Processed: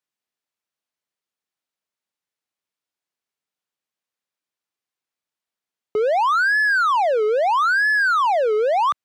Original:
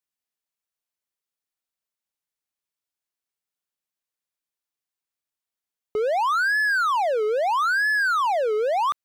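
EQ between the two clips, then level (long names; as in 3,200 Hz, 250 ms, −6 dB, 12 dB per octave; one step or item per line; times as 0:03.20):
high-pass filter 110 Hz
high-shelf EQ 7,800 Hz −11 dB
+4.0 dB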